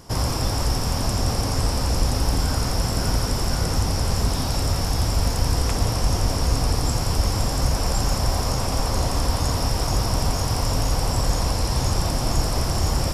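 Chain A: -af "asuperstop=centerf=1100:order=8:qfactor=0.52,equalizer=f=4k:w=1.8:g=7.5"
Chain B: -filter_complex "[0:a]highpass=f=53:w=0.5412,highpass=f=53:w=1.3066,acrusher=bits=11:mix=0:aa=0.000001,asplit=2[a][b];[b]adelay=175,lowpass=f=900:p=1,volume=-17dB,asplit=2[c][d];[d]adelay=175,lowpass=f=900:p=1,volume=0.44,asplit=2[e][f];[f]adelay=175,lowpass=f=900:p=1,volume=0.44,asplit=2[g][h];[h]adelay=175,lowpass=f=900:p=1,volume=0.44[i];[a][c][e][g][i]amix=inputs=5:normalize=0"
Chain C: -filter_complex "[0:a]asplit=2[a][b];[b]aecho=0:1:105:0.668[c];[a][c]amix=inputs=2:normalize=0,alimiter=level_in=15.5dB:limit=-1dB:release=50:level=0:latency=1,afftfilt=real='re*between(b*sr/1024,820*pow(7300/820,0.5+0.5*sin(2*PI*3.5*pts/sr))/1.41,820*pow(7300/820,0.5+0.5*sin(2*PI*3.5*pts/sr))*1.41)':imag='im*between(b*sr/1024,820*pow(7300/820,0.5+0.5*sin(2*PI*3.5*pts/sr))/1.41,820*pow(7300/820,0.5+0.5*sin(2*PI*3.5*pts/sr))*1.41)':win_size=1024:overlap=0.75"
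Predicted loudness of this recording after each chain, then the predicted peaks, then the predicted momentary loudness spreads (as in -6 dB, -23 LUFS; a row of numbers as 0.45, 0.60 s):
-22.5, -24.0, -21.0 LUFS; -7.0, -10.5, -5.0 dBFS; 1, 1, 2 LU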